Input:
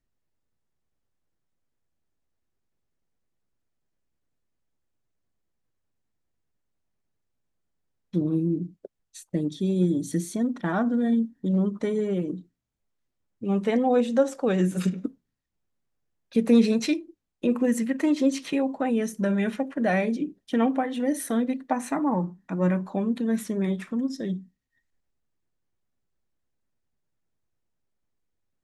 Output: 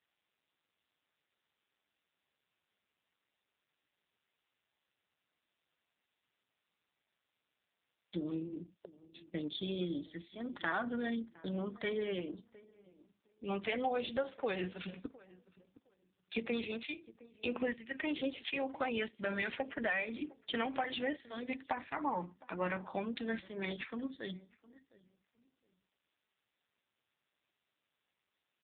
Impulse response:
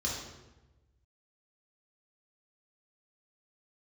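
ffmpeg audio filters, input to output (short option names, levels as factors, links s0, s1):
-filter_complex "[0:a]asettb=1/sr,asplit=3[s0][s1][s2];[s0]atrim=end=10.744[s3];[s1]atrim=start=10.74:end=12.1,asetpts=PTS-STARTPTS,afade=t=in:d=0.004:c=qsin,afade=t=out:st=1.356:d=0.004:c=qsin,agate=range=0.0126:threshold=0.0112:ratio=16:detection=peak[s4];[s2]atrim=start=12.096[s5];[s3][s4]acrossfade=d=0.004:c1=hsin:c2=qsin[s6];[s6][s5]acrossfade=d=0.004:c1=qsin:c2=hsin,aderivative,acompressor=threshold=0.00562:ratio=20,asplit=2[s7][s8];[s8]adelay=711,lowpass=f=1000:p=1,volume=0.1,asplit=2[s9][s10];[s10]adelay=711,lowpass=f=1000:p=1,volume=0.22[s11];[s7][s9][s11]amix=inputs=3:normalize=0,volume=6.31" -ar 8000 -c:a libopencore_amrnb -b:a 5900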